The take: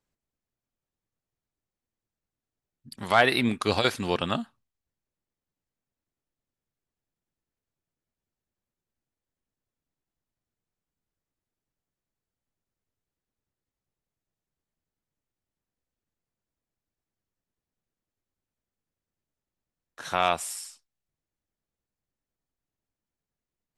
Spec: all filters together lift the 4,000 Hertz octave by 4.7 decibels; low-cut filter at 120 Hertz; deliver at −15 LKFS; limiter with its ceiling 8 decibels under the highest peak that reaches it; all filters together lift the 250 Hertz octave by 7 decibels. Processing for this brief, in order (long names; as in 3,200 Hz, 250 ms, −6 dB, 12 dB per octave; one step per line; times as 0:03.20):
high-pass filter 120 Hz
parametric band 250 Hz +8.5 dB
parametric band 4,000 Hz +5.5 dB
level +12.5 dB
brickwall limiter −1 dBFS